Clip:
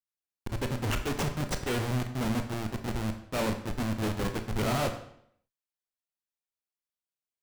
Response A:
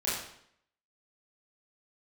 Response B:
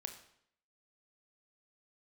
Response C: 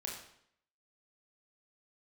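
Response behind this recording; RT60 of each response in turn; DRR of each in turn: B; 0.70 s, 0.70 s, 0.70 s; -9.0 dB, 6.0 dB, -1.5 dB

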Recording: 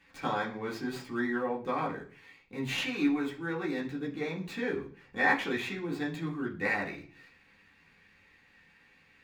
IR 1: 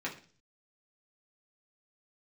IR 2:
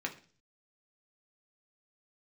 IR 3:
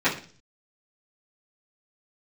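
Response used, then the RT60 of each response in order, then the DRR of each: 1; 0.40 s, 0.40 s, 0.40 s; -4.5 dB, 1.0 dB, -14.5 dB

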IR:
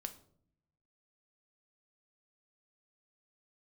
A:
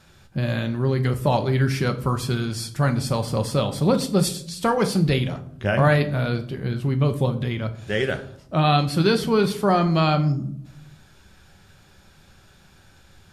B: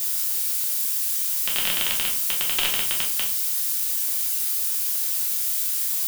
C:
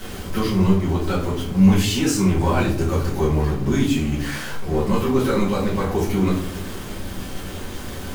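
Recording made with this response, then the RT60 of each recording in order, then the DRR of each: A; 0.60 s, 0.60 s, 0.60 s; 7.5 dB, -2.0 dB, -7.5 dB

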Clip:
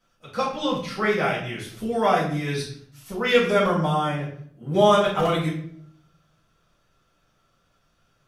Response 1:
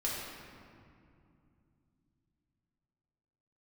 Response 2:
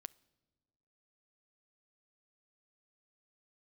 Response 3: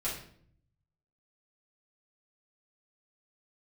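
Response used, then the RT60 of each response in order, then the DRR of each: 3; 2.5 s, no single decay rate, 0.60 s; -6.0 dB, 20.0 dB, -9.0 dB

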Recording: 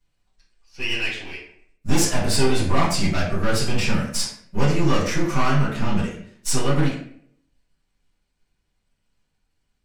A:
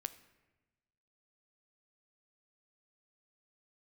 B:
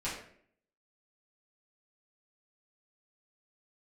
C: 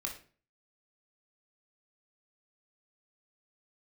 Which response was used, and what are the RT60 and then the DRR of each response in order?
B; 1.1 s, 0.60 s, 0.40 s; 11.5 dB, -10.0 dB, 0.5 dB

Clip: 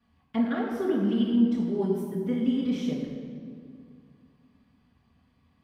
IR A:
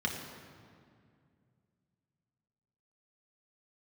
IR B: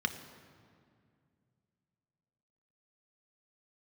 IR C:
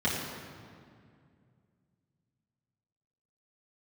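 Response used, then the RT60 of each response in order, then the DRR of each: C; 2.2 s, 2.2 s, 2.2 s; -0.5 dB, 7.0 dB, -8.5 dB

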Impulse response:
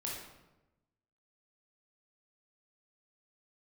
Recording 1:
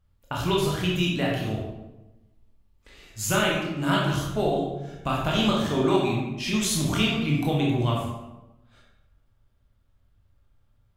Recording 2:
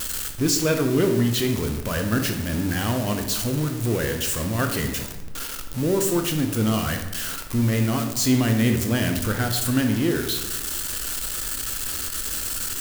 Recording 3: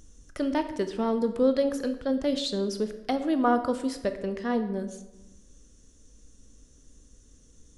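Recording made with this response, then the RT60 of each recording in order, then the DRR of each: 1; 1.0 s, 1.0 s, 1.0 s; -4.0 dB, 4.5 dB, 8.5 dB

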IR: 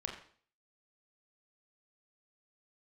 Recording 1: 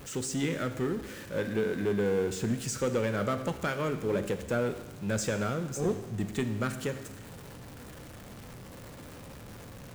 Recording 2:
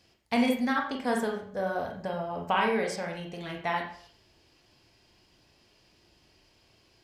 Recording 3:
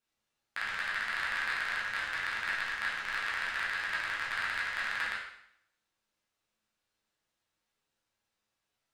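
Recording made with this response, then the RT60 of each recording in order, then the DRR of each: 2; 1.2 s, 0.50 s, 0.70 s; 8.5 dB, 0.5 dB, -7.5 dB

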